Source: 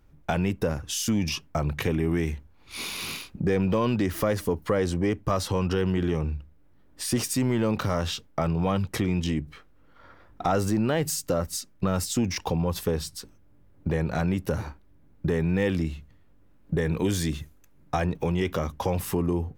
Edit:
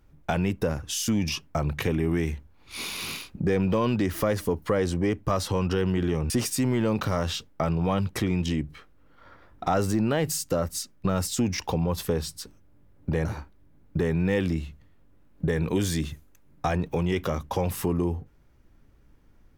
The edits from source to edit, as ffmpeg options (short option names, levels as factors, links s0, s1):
-filter_complex "[0:a]asplit=3[s0][s1][s2];[s0]atrim=end=6.302[s3];[s1]atrim=start=7.078:end=14.032[s4];[s2]atrim=start=14.538[s5];[s3][s4]acrossfade=d=0.004:c1=hsin:c2=hsin[s6];[s6][s5]acrossfade=d=0.004:c1=hsin:c2=hsin"